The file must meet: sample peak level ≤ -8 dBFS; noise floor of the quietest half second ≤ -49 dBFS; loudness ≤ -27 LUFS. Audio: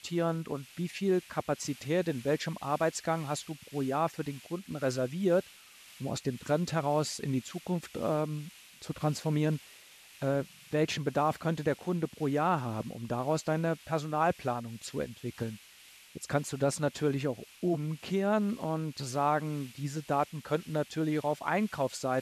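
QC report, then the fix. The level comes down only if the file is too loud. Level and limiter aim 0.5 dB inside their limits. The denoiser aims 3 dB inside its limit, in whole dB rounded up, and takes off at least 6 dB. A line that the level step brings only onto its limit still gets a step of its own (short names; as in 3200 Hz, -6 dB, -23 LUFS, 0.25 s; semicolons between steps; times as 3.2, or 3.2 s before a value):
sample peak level -15.0 dBFS: OK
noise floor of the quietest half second -56 dBFS: OK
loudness -32.5 LUFS: OK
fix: none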